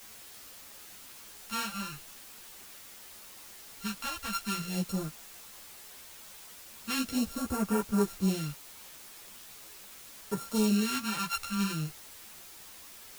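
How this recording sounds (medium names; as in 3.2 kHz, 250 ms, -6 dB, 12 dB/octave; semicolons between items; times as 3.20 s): a buzz of ramps at a fixed pitch in blocks of 32 samples; phasing stages 2, 0.42 Hz, lowest notch 360–3600 Hz; a quantiser's noise floor 8-bit, dither triangular; a shimmering, thickened sound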